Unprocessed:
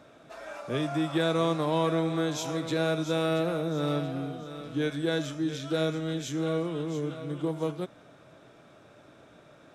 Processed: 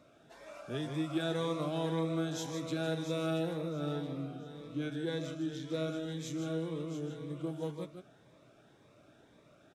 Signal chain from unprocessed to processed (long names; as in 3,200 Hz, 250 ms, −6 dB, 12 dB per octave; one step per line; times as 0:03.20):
0:03.53–0:05.88: high-shelf EQ 4,700 Hz −5.5 dB
single-tap delay 155 ms −8 dB
phaser whose notches keep moving one way rising 1.9 Hz
level −6.5 dB